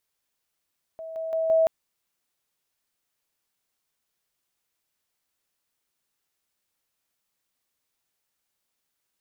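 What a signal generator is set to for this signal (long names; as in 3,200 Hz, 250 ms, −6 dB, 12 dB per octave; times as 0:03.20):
level staircase 648 Hz −34.5 dBFS, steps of 6 dB, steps 4, 0.17 s 0.00 s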